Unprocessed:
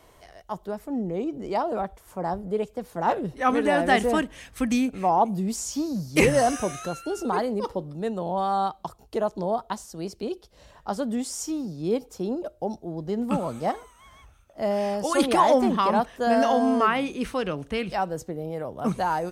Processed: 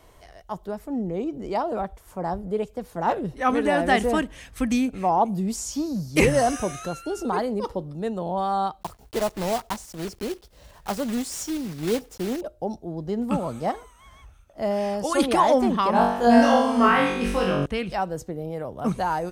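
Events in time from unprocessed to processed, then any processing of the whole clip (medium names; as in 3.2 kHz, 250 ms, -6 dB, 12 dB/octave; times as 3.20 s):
8.81–12.41 s: block-companded coder 3-bit
15.92–17.66 s: flutter echo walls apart 3.6 m, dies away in 0.73 s
whole clip: bass shelf 82 Hz +7.5 dB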